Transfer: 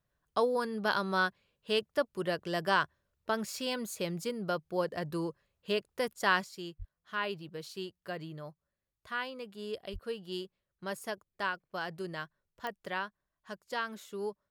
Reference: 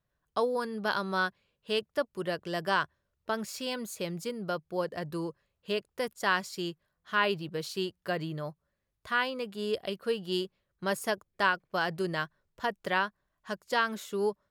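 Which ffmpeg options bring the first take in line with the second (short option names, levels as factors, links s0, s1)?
-filter_complex "[0:a]adeclick=t=4,asplit=3[s0][s1][s2];[s0]afade=t=out:st=6.78:d=0.02[s3];[s1]highpass=f=140:w=0.5412,highpass=f=140:w=1.3066,afade=t=in:st=6.78:d=0.02,afade=t=out:st=6.9:d=0.02[s4];[s2]afade=t=in:st=6.9:d=0.02[s5];[s3][s4][s5]amix=inputs=3:normalize=0,asplit=3[s6][s7][s8];[s6]afade=t=out:st=9.92:d=0.02[s9];[s7]highpass=f=140:w=0.5412,highpass=f=140:w=1.3066,afade=t=in:st=9.92:d=0.02,afade=t=out:st=10.04:d=0.02[s10];[s8]afade=t=in:st=10.04:d=0.02[s11];[s9][s10][s11]amix=inputs=3:normalize=0,asetnsamples=n=441:p=0,asendcmd='6.44 volume volume 7.5dB',volume=1"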